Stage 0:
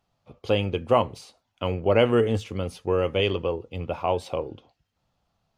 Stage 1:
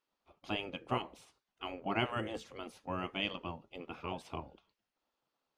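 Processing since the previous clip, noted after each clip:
gate on every frequency bin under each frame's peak −10 dB weak
high-shelf EQ 4,900 Hz −5.5 dB
level −6.5 dB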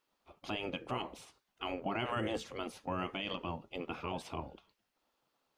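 brickwall limiter −31 dBFS, peak gain reduction 11.5 dB
level +5.5 dB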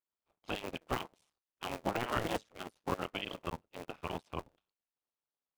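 sub-harmonics by changed cycles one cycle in 2, muted
expander for the loud parts 2.5 to 1, over −53 dBFS
level +7.5 dB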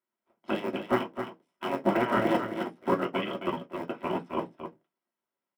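single-tap delay 264 ms −8.5 dB
convolution reverb RT60 0.15 s, pre-delay 3 ms, DRR 0.5 dB
level −4 dB

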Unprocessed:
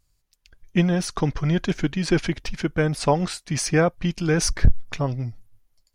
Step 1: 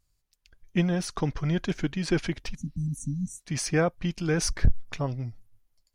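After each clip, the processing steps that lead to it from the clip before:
healed spectral selection 0:02.57–0:03.38, 280–5,700 Hz after
level −5 dB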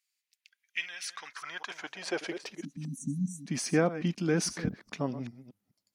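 delay that plays each chunk backwards 204 ms, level −13 dB
high-pass filter sweep 2,200 Hz → 220 Hz, 0:01.03–0:02.98
level −3.5 dB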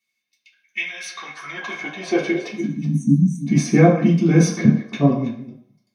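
convolution reverb RT60 0.60 s, pre-delay 3 ms, DRR −9.5 dB
level −3.5 dB

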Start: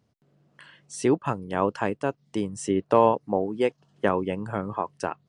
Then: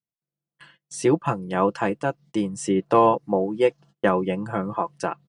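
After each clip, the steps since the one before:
comb filter 5.9 ms, depth 63%
noise gate −48 dBFS, range −32 dB
level +1.5 dB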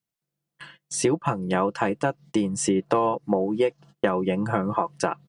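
downward compressor 6 to 1, threshold −25 dBFS, peak gain reduction 12.5 dB
level +6 dB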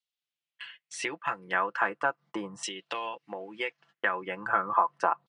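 auto-filter band-pass saw down 0.38 Hz 970–3,600 Hz
level +5.5 dB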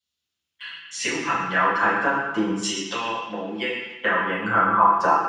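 convolution reverb RT60 1.0 s, pre-delay 3 ms, DRR −12 dB
level −4.5 dB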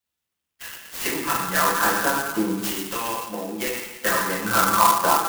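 converter with an unsteady clock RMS 0.066 ms

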